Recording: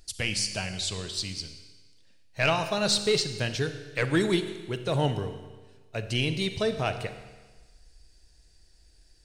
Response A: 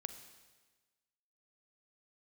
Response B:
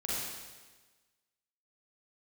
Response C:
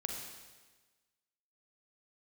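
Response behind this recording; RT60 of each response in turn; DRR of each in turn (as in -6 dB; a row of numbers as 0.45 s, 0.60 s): A; 1.3 s, 1.3 s, 1.3 s; 9.0 dB, -7.5 dB, 1.5 dB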